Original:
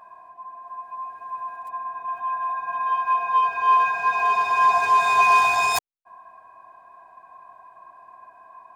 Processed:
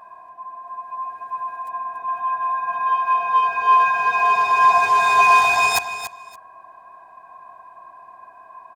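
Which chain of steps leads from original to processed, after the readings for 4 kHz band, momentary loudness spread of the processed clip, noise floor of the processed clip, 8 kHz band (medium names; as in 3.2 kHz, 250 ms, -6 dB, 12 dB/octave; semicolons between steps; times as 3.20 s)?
+4.0 dB, 17 LU, -46 dBFS, +4.0 dB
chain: feedback delay 285 ms, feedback 18%, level -11 dB; trim +3.5 dB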